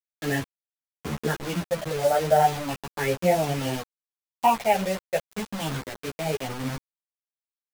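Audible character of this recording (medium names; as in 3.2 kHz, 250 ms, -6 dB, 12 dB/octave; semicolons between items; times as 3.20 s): phasing stages 6, 0.35 Hz, lowest notch 270–1300 Hz; a quantiser's noise floor 6-bit, dither none; a shimmering, thickened sound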